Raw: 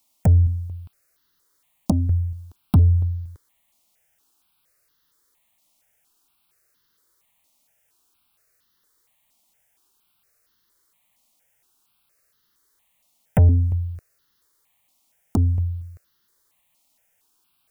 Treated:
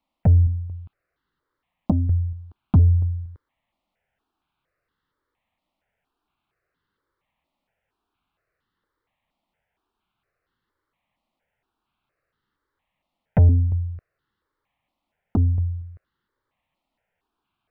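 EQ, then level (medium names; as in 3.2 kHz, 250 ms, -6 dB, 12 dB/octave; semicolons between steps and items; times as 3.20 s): distance through air 470 m; 0.0 dB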